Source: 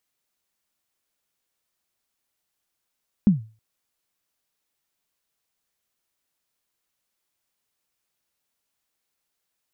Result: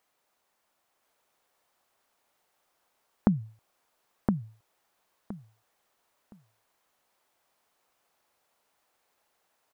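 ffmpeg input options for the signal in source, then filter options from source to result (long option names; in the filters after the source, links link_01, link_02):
-f lavfi -i "aevalsrc='0.376*pow(10,-3*t/0.34)*sin(2*PI*(220*0.138/log(110/220)*(exp(log(110/220)*min(t,0.138)/0.138)-1)+110*max(t-0.138,0)))':duration=0.32:sample_rate=44100"
-filter_complex "[0:a]equalizer=frequency=780:width_type=o:width=2.6:gain=13.5,acompressor=threshold=-20dB:ratio=6,asplit=2[link_01][link_02];[link_02]aecho=0:1:1017|2034|3051:0.668|0.134|0.0267[link_03];[link_01][link_03]amix=inputs=2:normalize=0"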